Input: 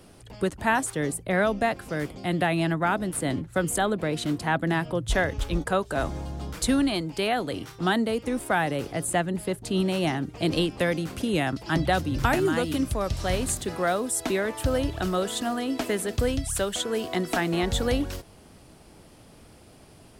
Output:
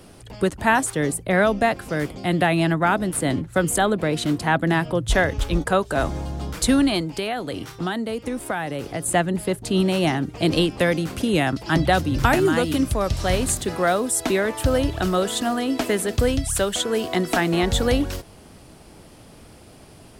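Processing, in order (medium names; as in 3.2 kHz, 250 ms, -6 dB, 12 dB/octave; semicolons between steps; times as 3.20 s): 7.03–9.06 s: compression 3:1, threshold -30 dBFS, peak gain reduction 9 dB; trim +5 dB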